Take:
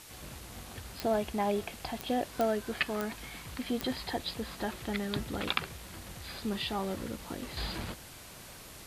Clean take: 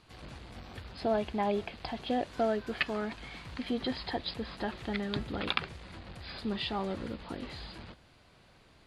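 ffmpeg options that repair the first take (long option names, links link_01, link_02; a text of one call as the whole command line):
ffmpeg -i in.wav -af "adeclick=threshold=4,afwtdn=0.0032,asetnsamples=nb_out_samples=441:pad=0,asendcmd='7.57 volume volume -8.5dB',volume=0dB" out.wav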